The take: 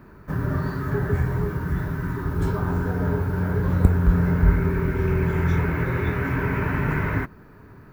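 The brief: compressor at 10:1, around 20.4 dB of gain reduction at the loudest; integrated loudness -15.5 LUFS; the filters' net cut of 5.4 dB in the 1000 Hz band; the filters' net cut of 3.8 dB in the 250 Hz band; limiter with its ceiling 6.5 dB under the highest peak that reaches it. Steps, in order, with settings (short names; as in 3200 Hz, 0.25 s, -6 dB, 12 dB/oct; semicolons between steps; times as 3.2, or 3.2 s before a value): bell 250 Hz -6.5 dB; bell 1000 Hz -6.5 dB; compressor 10:1, threshold -32 dBFS; gain +23 dB; limiter -5.5 dBFS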